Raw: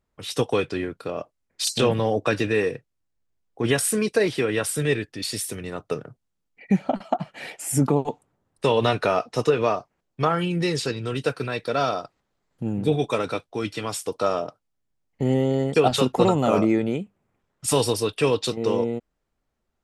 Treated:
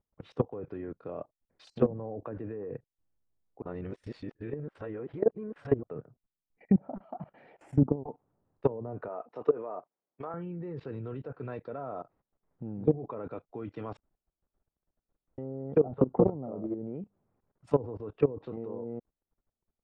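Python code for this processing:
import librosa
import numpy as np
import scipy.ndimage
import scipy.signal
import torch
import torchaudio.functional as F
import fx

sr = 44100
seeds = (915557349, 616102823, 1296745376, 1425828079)

y = fx.bessel_highpass(x, sr, hz=380.0, order=2, at=(9.08, 10.34))
y = fx.edit(y, sr, fx.reverse_span(start_s=3.62, length_s=2.21),
    fx.room_tone_fill(start_s=13.97, length_s=1.41), tone=tone)
y = scipy.signal.sosfilt(scipy.signal.butter(2, 1100.0, 'lowpass', fs=sr, output='sos'), y)
y = fx.env_lowpass_down(y, sr, base_hz=590.0, full_db=-16.5)
y = fx.level_steps(y, sr, step_db=19)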